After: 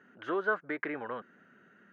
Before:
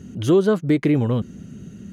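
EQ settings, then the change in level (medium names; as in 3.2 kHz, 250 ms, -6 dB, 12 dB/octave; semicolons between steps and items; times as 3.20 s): high-pass 660 Hz 12 dB/octave; resonant low-pass 1.6 kHz, resonance Q 4; -7.5 dB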